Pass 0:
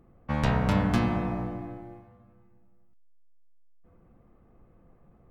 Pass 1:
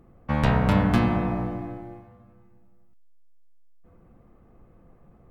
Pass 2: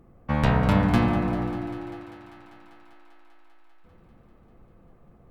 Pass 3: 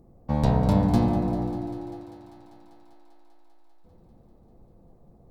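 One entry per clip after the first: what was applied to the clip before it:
dynamic equaliser 6,200 Hz, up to −6 dB, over −57 dBFS, Q 1.3; level +4 dB
feedback echo with a high-pass in the loop 197 ms, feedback 81%, high-pass 210 Hz, level −15 dB
flat-topped bell 1,900 Hz −13.5 dB

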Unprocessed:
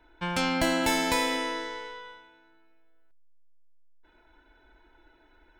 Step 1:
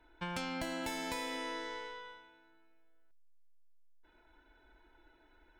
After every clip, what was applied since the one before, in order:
downward compressor 6 to 1, threshold −31 dBFS, peak gain reduction 10 dB
level −5 dB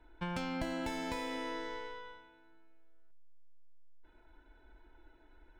running median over 3 samples
spectral tilt −1.5 dB per octave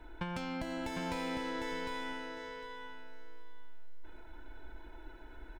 downward compressor 6 to 1, threshold −46 dBFS, peak gain reduction 13 dB
on a send: repeating echo 754 ms, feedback 18%, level −4.5 dB
on the sum: level +9.5 dB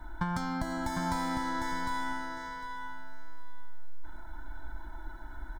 phaser with its sweep stopped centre 1,100 Hz, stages 4
level +9 dB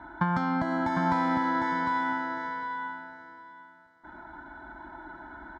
band-pass filter 150–2,400 Hz
level +7 dB

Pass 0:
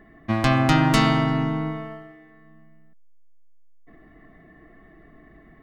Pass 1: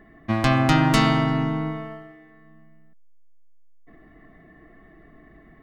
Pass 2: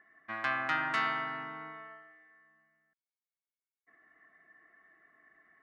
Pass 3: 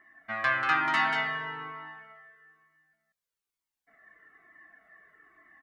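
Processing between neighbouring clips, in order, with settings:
no processing that can be heard
resonant band-pass 1,600 Hz, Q 2.4; level −3 dB
single-tap delay 188 ms −5.5 dB; flanger whose copies keep moving one way falling 1.1 Hz; level +9 dB

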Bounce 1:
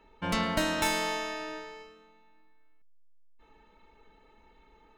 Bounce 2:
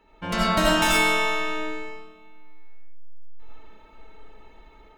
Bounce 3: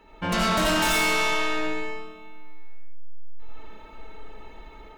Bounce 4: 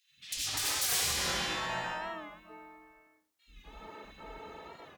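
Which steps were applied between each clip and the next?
automatic gain control gain up to 4 dB; comb and all-pass reverb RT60 0.53 s, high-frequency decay 0.55×, pre-delay 45 ms, DRR −3.5 dB
soft clipping −26 dBFS, distortion −6 dB; level +6 dB
gate on every frequency bin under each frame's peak −20 dB weak; three-band delay without the direct sound highs, lows, mids 90/250 ms, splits 240/2,500 Hz; wow of a warped record 45 rpm, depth 100 cents; level +2 dB

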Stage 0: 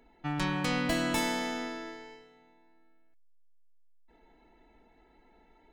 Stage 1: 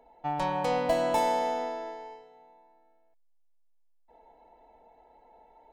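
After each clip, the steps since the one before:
flat-topped bell 680 Hz +15.5 dB 1.3 octaves
level −5.5 dB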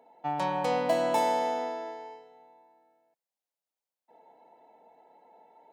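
high-pass filter 140 Hz 24 dB per octave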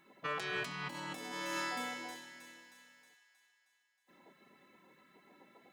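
gate on every frequency bin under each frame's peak −15 dB weak
delay with a high-pass on its return 315 ms, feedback 56%, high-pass 1,500 Hz, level −13 dB
compressor whose output falls as the input rises −45 dBFS, ratio −1
level +4.5 dB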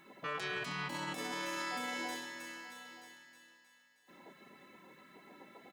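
brickwall limiter −36.5 dBFS, peak gain reduction 10.5 dB
single-tap delay 928 ms −15 dB
level +6 dB

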